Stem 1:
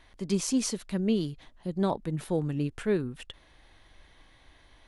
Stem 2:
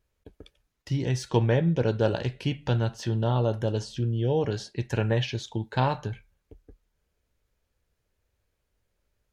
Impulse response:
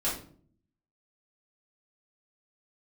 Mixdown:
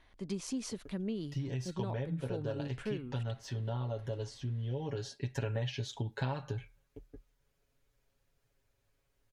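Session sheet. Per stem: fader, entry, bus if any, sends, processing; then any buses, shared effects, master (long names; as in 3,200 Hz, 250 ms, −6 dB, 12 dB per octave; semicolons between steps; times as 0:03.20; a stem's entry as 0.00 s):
−6.0 dB, 0.00 s, no send, high-shelf EQ 6,300 Hz −8 dB
−2.5 dB, 0.45 s, no send, comb filter 7.3 ms, depth 95%; automatic ducking −9 dB, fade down 1.55 s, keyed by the first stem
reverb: not used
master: downward compressor 5 to 1, threshold −33 dBFS, peak gain reduction 14 dB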